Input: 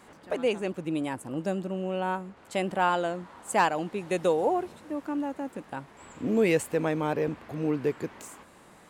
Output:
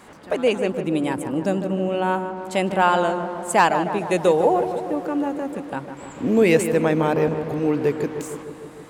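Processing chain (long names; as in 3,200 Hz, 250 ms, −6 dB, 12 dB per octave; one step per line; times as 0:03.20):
feedback echo with a low-pass in the loop 153 ms, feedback 73%, low-pass 1,700 Hz, level −8.5 dB
level +7 dB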